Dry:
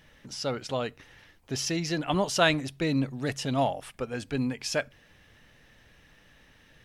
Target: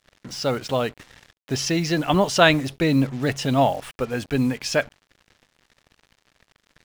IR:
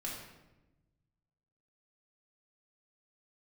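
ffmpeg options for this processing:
-af "highshelf=f=6500:g=-7,acrusher=bits=7:mix=0:aa=0.5,volume=2.37"

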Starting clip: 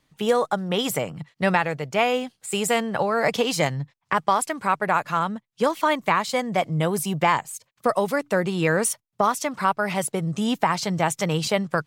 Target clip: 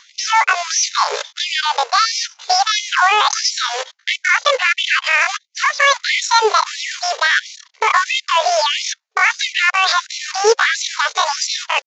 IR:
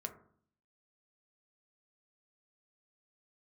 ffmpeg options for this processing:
-af "aresample=8000,acrusher=bits=3:mode=log:mix=0:aa=0.000001,aresample=44100,asetrate=80880,aresample=44100,atempo=0.545254,highpass=52,areverse,acompressor=threshold=0.0282:ratio=6,areverse,alimiter=level_in=29.9:limit=0.891:release=50:level=0:latency=1,afftfilt=real='re*gte(b*sr/1024,400*pow(2000/400,0.5+0.5*sin(2*PI*1.5*pts/sr)))':imag='im*gte(b*sr/1024,400*pow(2000/400,0.5+0.5*sin(2*PI*1.5*pts/sr)))':win_size=1024:overlap=0.75,volume=0.841"

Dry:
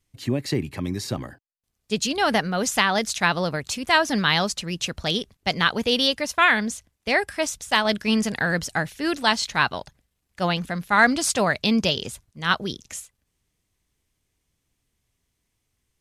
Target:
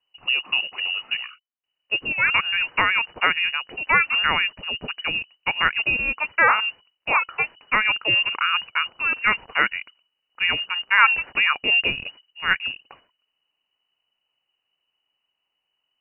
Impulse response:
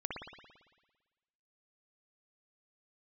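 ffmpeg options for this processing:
-filter_complex "[0:a]asplit=2[s0][s1];[s1]aeval=exprs='val(0)*gte(abs(val(0)),0.0282)':c=same,volume=0.299[s2];[s0][s2]amix=inputs=2:normalize=0,lowpass=f=2600:t=q:w=0.5098,lowpass=f=2600:t=q:w=0.6013,lowpass=f=2600:t=q:w=0.9,lowpass=f=2600:t=q:w=2.563,afreqshift=-3000,volume=0.891"

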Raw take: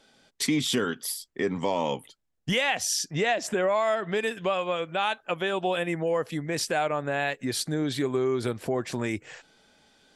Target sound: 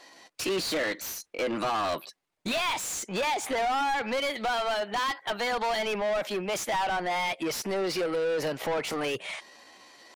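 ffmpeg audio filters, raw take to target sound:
-filter_complex "[0:a]asetrate=55563,aresample=44100,atempo=0.793701,asplit=2[s0][s1];[s1]highpass=f=720:p=1,volume=20,asoftclip=type=tanh:threshold=0.224[s2];[s0][s2]amix=inputs=2:normalize=0,lowpass=f=3500:p=1,volume=0.501,volume=0.398"

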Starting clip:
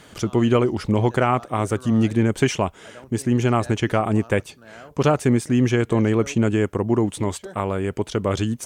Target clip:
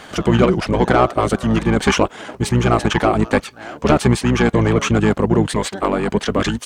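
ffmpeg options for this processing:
-filter_complex "[0:a]atempo=1.3,asplit=2[s0][s1];[s1]highpass=f=720:p=1,volume=5.01,asoftclip=type=tanh:threshold=0.531[s2];[s0][s2]amix=inputs=2:normalize=0,lowpass=f=4800:p=1,volume=0.501,asplit=2[s3][s4];[s4]asetrate=22050,aresample=44100,atempo=2,volume=0.891[s5];[s3][s5]amix=inputs=2:normalize=0,volume=1.12"

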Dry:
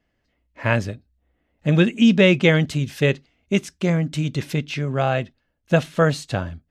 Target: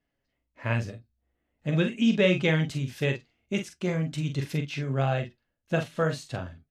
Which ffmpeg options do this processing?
-filter_complex "[0:a]dynaudnorm=f=330:g=9:m=1.78,flanger=delay=7:depth=1.8:regen=65:speed=0.44:shape=triangular,asplit=2[s0][s1];[s1]adelay=44,volume=0.447[s2];[s0][s2]amix=inputs=2:normalize=0,volume=0.531"

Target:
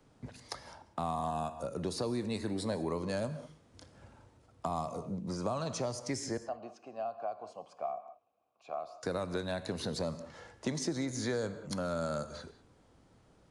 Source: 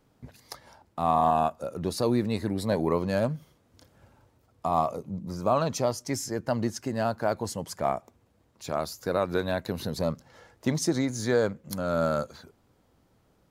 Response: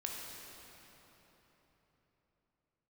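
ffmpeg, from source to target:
-filter_complex "[0:a]asettb=1/sr,asplit=3[s0][s1][s2];[s0]atrim=end=6.374[s3];[s1]atrim=start=6.37:end=9.03,asetpts=PTS-STARTPTS,afade=t=in:d=0.004:c=qsin,afade=t=out:st=2.656:d=0.004:c=qsin,asplit=3[s4][s5][s6];[s4]bandpass=f=730:t=q:w=8,volume=1[s7];[s5]bandpass=f=1090:t=q:w=8,volume=0.501[s8];[s6]bandpass=f=2440:t=q:w=8,volume=0.355[s9];[s7][s8][s9]amix=inputs=3:normalize=0[s10];[s2]atrim=start=9.026[s11];[s3][s10]acrossfade=d=0.004:c1=hsin:c2=qsin[s12];[s12][s11]acrossfade=d=0.004:c1=qsin:c2=hsin,aresample=22050,aresample=44100,asplit=2[s13][s14];[1:a]atrim=start_sample=2205,afade=t=out:st=0.25:d=0.01,atrim=end_sample=11466[s15];[s14][s15]afir=irnorm=-1:irlink=0,volume=0.473[s16];[s13][s16]amix=inputs=2:normalize=0,acrossover=split=85|220|4900[s17][s18][s19][s20];[s17]acompressor=threshold=0.002:ratio=4[s21];[s18]acompressor=threshold=0.00708:ratio=4[s22];[s19]acompressor=threshold=0.02:ratio=4[s23];[s20]acompressor=threshold=0.00631:ratio=4[s24];[s21][s22][s23][s24]amix=inputs=4:normalize=0,volume=0.891"

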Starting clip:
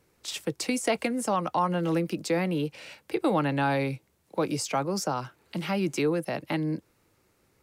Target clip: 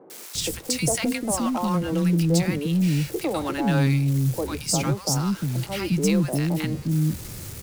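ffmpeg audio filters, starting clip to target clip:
-filter_complex "[0:a]aeval=exprs='val(0)+0.5*0.0126*sgn(val(0))':c=same,bass=f=250:g=13,treble=f=4000:g=8,acrossover=split=310|950[s0][s1][s2];[s2]adelay=100[s3];[s0]adelay=350[s4];[s4][s1][s3]amix=inputs=3:normalize=0"

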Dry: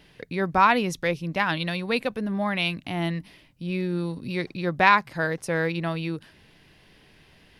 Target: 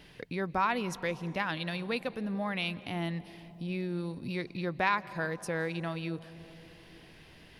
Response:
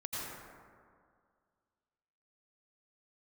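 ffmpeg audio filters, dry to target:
-filter_complex "[0:a]acompressor=threshold=0.00562:ratio=1.5,asplit=2[s0][s1];[1:a]atrim=start_sample=2205,asetrate=22932,aresample=44100[s2];[s1][s2]afir=irnorm=-1:irlink=0,volume=0.0708[s3];[s0][s3]amix=inputs=2:normalize=0"

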